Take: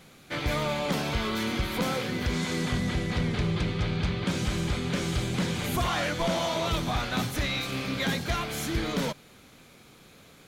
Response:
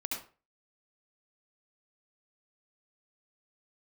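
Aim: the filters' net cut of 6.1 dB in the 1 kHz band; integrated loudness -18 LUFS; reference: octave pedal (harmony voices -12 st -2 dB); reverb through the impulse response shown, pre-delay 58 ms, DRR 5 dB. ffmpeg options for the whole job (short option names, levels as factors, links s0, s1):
-filter_complex "[0:a]equalizer=f=1000:t=o:g=-8.5,asplit=2[s0][s1];[1:a]atrim=start_sample=2205,adelay=58[s2];[s1][s2]afir=irnorm=-1:irlink=0,volume=0.422[s3];[s0][s3]amix=inputs=2:normalize=0,asplit=2[s4][s5];[s5]asetrate=22050,aresample=44100,atempo=2,volume=0.794[s6];[s4][s6]amix=inputs=2:normalize=0,volume=2.99"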